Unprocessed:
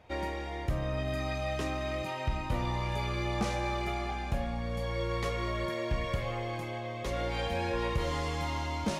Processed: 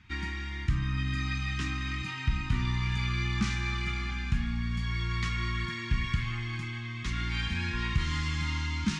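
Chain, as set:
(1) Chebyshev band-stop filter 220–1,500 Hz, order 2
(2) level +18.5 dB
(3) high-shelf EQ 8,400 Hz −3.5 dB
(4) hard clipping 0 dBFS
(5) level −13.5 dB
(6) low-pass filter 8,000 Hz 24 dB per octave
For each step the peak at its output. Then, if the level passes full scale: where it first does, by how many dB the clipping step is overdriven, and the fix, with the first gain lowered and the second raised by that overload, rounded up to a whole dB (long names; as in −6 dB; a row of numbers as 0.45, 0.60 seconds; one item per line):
−19.5, −1.0, −1.5, −1.5, −15.0, −15.0 dBFS
no step passes full scale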